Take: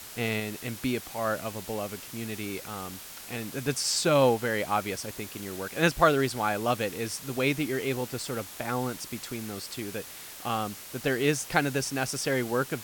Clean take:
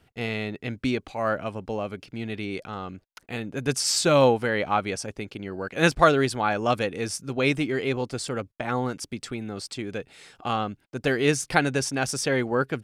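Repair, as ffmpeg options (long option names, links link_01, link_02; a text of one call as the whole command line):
ffmpeg -i in.wav -af "afwtdn=0.0071,asetnsamples=nb_out_samples=441:pad=0,asendcmd='0.4 volume volume 3.5dB',volume=0dB" out.wav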